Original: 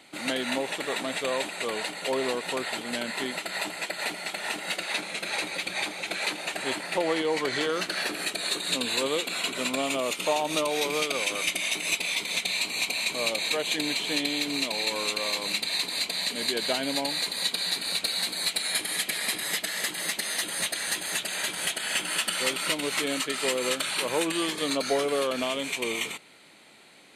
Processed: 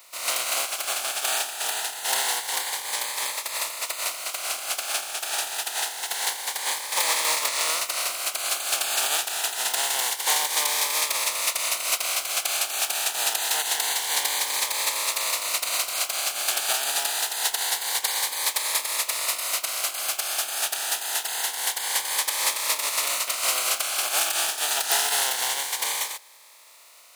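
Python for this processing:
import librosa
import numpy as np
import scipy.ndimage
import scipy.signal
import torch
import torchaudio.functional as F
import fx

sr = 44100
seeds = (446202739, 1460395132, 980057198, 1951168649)

y = fx.spec_flatten(x, sr, power=0.21)
y = fx.highpass_res(y, sr, hz=770.0, q=1.9)
y = fx.notch_cascade(y, sr, direction='rising', hz=0.26)
y = y * librosa.db_to_amplitude(3.5)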